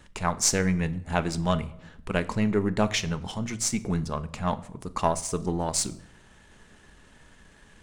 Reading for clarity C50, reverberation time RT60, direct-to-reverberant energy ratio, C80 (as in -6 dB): 18.0 dB, 0.75 s, 12.0 dB, 21.0 dB